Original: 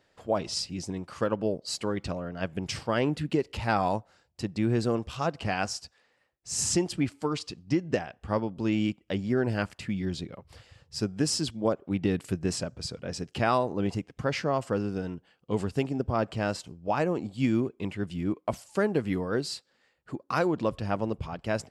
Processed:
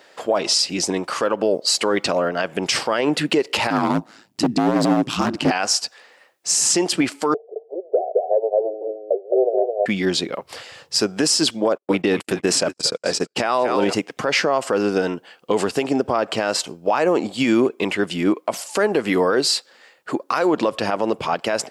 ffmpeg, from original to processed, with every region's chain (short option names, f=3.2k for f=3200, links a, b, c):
-filter_complex "[0:a]asettb=1/sr,asplit=3[a][b][c];[a]atrim=end=3.704[d];[b]atrim=start=3.7:end=5.51,asetpts=PTS-STARTPTS,afade=t=in:d=0.004:c=qsin,afade=t=out:st=1.806:d=0.004:c=qsin,lowshelf=f=340:t=q:w=3:g=10.5,asoftclip=type=hard:threshold=-17dB,aeval=exprs='val(0)*sin(2*PI*54*n/s)':c=same[e];[c]atrim=start=5.506[f];[d][e]acrossfade=d=0.004:c1=hsin:c2=qsin[g];[g][f]acrossfade=d=0.004:c1=qsin:c2=hsin,asettb=1/sr,asplit=3[h][i][j];[h]atrim=end=7.344[k];[i]atrim=start=7.34:end=9.86,asetpts=PTS-STARTPTS,afade=t=in:d=0.004:c=qsin,afade=t=out:st=2.516:d=0.004:c=qsin,asoftclip=type=hard:threshold=-17.5dB,asuperpass=centerf=540:order=12:qfactor=1.6,aecho=1:1:215:0.668,atrim=end_sample=111132[l];[j]atrim=start=9.856[m];[k][l]acrossfade=d=0.004:c1=hsin:c2=qsin[n];[n][m]acrossfade=d=0.004:c1=qsin:c2=hsin,asettb=1/sr,asplit=3[o][p][q];[o]atrim=end=11.654[r];[p]atrim=start=11.65:end=13.93,asetpts=PTS-STARTPTS,afade=t=in:d=0.004:c=qsin,afade=t=out:st=2.276:d=0.004:c=qsin,asplit=5[s][t][u][v][w];[t]adelay=226,afreqshift=-88,volume=-13.5dB[x];[u]adelay=452,afreqshift=-176,volume=-21.5dB[y];[v]adelay=678,afreqshift=-264,volume=-29.4dB[z];[w]adelay=904,afreqshift=-352,volume=-37.4dB[aa];[s][x][y][z][aa]amix=inputs=5:normalize=0,atrim=end_sample=100548,agate=range=-52dB:threshold=-37dB:ratio=16:release=100:detection=peak[ab];[q]atrim=start=13.926[ac];[r][ab]acrossfade=d=0.004:c1=hsin:c2=qsin[ad];[ad][ac]acrossfade=d=0.004:c1=qsin:c2=hsin,highpass=390,acompressor=threshold=-29dB:ratio=6,alimiter=level_in=26.5dB:limit=-1dB:release=50:level=0:latency=1,volume=-7.5dB"